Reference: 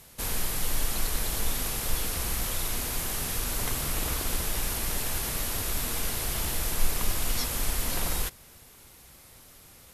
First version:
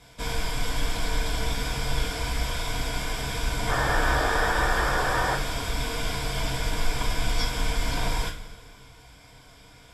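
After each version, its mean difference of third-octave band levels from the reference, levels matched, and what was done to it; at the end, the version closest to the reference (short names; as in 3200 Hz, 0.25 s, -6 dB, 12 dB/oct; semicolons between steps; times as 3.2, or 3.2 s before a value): 5.5 dB: ripple EQ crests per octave 1.7, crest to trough 9 dB; painted sound noise, 3.69–5.35, 310–1900 Hz -30 dBFS; air absorption 93 m; two-slope reverb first 0.29 s, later 1.9 s, from -18 dB, DRR -2.5 dB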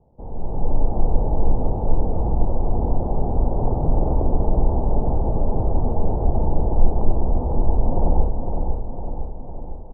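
22.5 dB: Chebyshev low-pass 870 Hz, order 5; AGC gain up to 13 dB; feedback echo 0.506 s, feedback 57%, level -5.5 dB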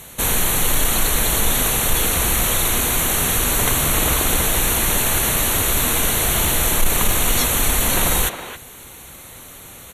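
1.5 dB: Butterworth band-stop 5000 Hz, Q 3.4; speakerphone echo 0.27 s, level -8 dB; in parallel at -6 dB: sine folder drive 4 dB, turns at -11.5 dBFS; on the sum: low shelf 61 Hz -6.5 dB; gain +6.5 dB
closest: third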